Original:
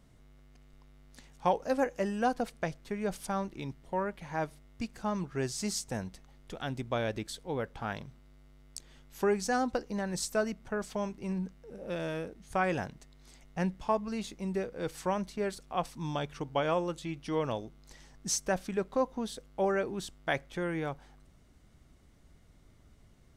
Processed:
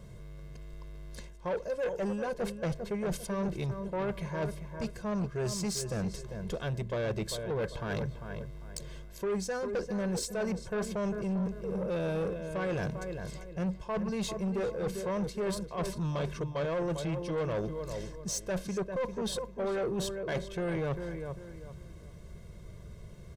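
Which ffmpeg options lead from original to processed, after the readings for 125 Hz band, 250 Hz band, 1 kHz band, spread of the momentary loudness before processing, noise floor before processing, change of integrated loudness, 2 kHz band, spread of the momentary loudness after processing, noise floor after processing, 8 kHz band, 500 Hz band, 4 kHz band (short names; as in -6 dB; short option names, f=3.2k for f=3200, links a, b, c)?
+4.5 dB, +1.0 dB, -6.0 dB, 10 LU, -60 dBFS, -0.5 dB, -3.0 dB, 15 LU, -48 dBFS, -1.0 dB, +0.5 dB, 0.0 dB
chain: -filter_complex "[0:a]areverse,acompressor=threshold=-38dB:ratio=8,areverse,equalizer=f=220:w=0.65:g=10.5,aecho=1:1:1.9:0.92,asplit=2[a][b];[b]adelay=397,lowpass=f=2.8k:p=1,volume=-9.5dB,asplit=2[c][d];[d]adelay=397,lowpass=f=2.8k:p=1,volume=0.31,asplit=2[e][f];[f]adelay=397,lowpass=f=2.8k:p=1,volume=0.31[g];[c][e][g]amix=inputs=3:normalize=0[h];[a][h]amix=inputs=2:normalize=0,asoftclip=type=tanh:threshold=-32.5dB,volume=5dB"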